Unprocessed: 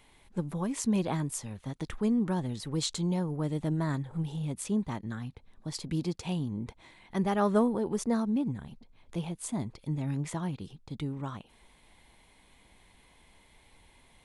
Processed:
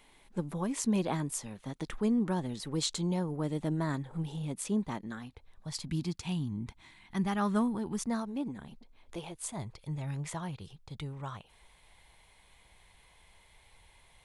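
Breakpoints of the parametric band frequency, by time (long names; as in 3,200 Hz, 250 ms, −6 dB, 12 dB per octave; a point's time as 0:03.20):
parametric band −13 dB 0.97 octaves
0:04.97 82 Hz
0:05.93 510 Hz
0:08.02 510 Hz
0:08.65 89 Hz
0:09.59 260 Hz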